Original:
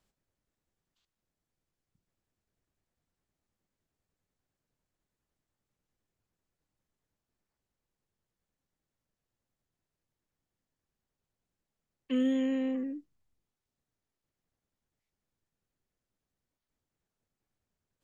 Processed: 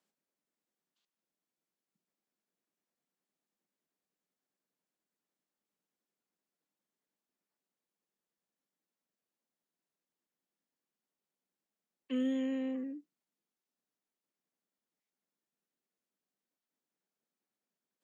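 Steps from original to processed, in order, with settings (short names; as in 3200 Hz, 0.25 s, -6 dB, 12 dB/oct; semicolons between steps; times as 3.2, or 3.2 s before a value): steep high-pass 180 Hz; gain -4.5 dB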